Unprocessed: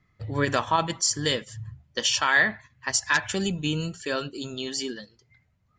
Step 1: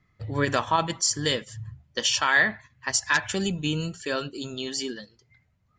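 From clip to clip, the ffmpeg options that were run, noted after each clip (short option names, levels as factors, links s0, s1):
-af anull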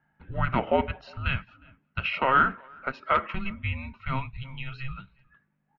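-filter_complex "[0:a]aeval=exprs='val(0)+0.00112*(sin(2*PI*50*n/s)+sin(2*PI*2*50*n/s)/2+sin(2*PI*3*50*n/s)/3+sin(2*PI*4*50*n/s)/4+sin(2*PI*5*50*n/s)/5)':c=same,asplit=2[s0][s1];[s1]adelay=360,highpass=300,lowpass=3400,asoftclip=type=hard:threshold=0.133,volume=0.0501[s2];[s0][s2]amix=inputs=2:normalize=0,highpass=f=240:t=q:w=0.5412,highpass=f=240:t=q:w=1.307,lowpass=f=3100:t=q:w=0.5176,lowpass=f=3100:t=q:w=0.7071,lowpass=f=3100:t=q:w=1.932,afreqshift=-400"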